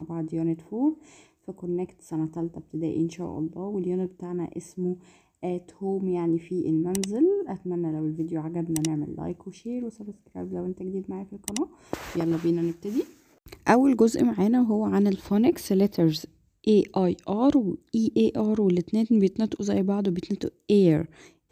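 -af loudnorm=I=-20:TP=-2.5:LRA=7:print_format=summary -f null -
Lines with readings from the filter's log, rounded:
Input Integrated:    -25.9 LUFS
Input True Peak:      -5.9 dBTP
Input LRA:             8.3 LU
Input Threshold:     -36.3 LUFS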